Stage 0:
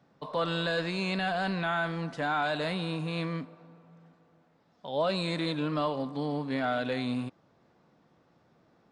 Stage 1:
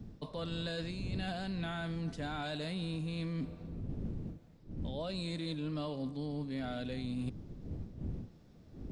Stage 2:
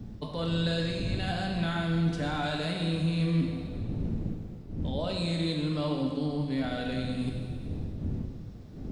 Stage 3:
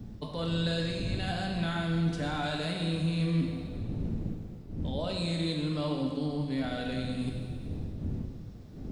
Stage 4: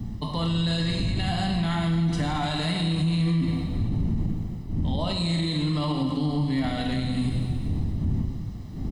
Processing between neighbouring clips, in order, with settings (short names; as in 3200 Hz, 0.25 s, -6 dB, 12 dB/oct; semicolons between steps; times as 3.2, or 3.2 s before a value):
wind noise 230 Hz -41 dBFS; bell 1100 Hz -14.5 dB 2.5 oct; reverse; compressor 12:1, threshold -42 dBFS, peak gain reduction 18.5 dB; reverse; gain +7.5 dB
plate-style reverb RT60 1.9 s, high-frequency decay 1×, DRR 1 dB; gain +5.5 dB
high shelf 7400 Hz +4 dB; gain -1.5 dB
comb 1 ms, depth 57%; limiter -25 dBFS, peak gain reduction 7.5 dB; gain +7.5 dB